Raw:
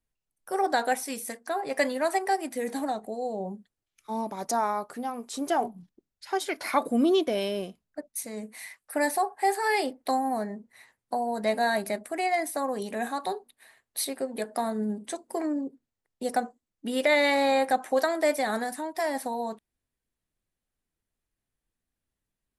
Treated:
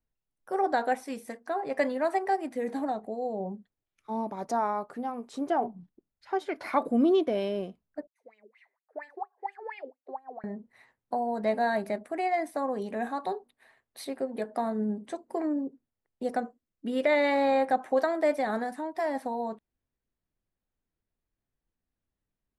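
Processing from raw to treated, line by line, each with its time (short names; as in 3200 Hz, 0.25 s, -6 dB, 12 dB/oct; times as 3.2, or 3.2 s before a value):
5.44–6.56 high shelf 3900 Hz -6.5 dB
8.07–10.44 wah 4.3 Hz 370–3000 Hz, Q 9.1
16.35–17.06 bell 850 Hz -7 dB 0.35 oct
whole clip: LPF 1400 Hz 6 dB/oct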